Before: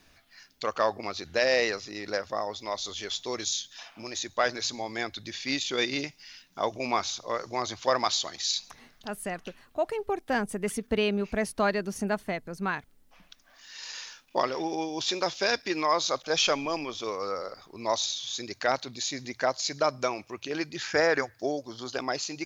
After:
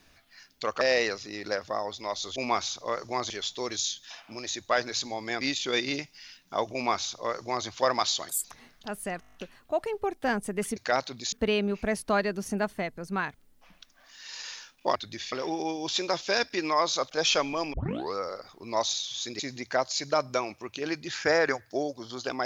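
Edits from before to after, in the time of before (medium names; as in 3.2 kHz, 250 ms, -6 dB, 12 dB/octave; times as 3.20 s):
0.81–1.43 s: delete
5.09–5.46 s: move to 14.45 s
6.78–7.72 s: copy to 2.98 s
8.34–8.64 s: speed 196%
9.40 s: stutter 0.02 s, 8 plays
16.86 s: tape start 0.40 s
18.52–19.08 s: move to 10.82 s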